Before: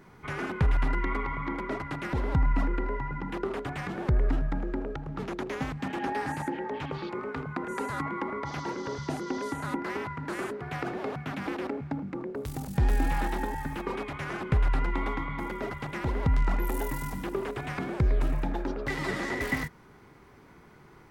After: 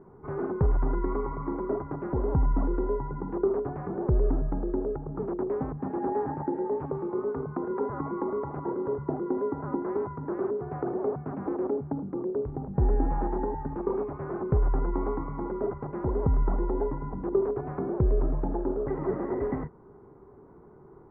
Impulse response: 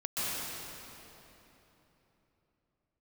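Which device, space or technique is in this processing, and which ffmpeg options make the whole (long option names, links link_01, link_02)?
under water: -af "lowpass=frequency=1100:width=0.5412,lowpass=frequency=1100:width=1.3066,equalizer=frequency=400:width_type=o:width=0.45:gain=8.5"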